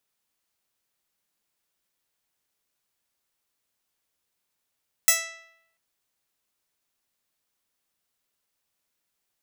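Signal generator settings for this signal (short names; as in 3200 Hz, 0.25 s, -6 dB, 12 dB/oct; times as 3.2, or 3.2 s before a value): plucked string E5, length 0.69 s, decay 0.80 s, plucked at 0.15, bright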